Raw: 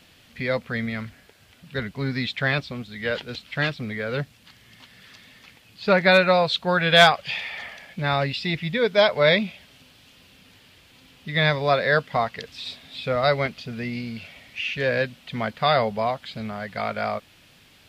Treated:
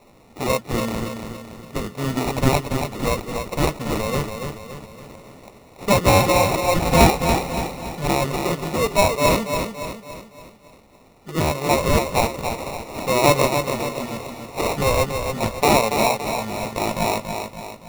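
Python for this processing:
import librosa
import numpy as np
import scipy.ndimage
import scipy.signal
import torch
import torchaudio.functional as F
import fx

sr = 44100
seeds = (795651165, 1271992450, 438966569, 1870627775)

p1 = scipy.signal.sosfilt(scipy.signal.butter(8, 4500.0, 'lowpass', fs=sr, output='sos'), x)
p2 = fx.low_shelf(p1, sr, hz=370.0, db=-6.5)
p3 = fx.hum_notches(p2, sr, base_hz=60, count=7)
p4 = fx.rider(p3, sr, range_db=10, speed_s=2.0)
p5 = p3 + F.gain(torch.from_numpy(p4), 2.0).numpy()
p6 = fx.sample_hold(p5, sr, seeds[0], rate_hz=1600.0, jitter_pct=0)
p7 = p6 + fx.echo_feedback(p6, sr, ms=283, feedback_pct=47, wet_db=-6.5, dry=0)
y = F.gain(torch.from_numpy(p7), -4.5).numpy()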